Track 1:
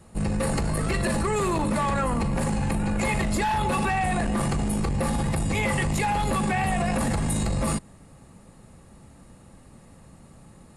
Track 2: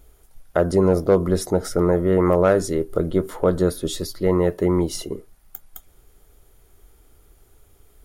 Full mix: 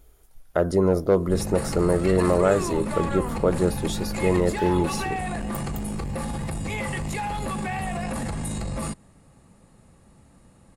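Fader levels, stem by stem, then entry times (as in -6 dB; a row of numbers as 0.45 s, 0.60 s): -4.5 dB, -3.0 dB; 1.15 s, 0.00 s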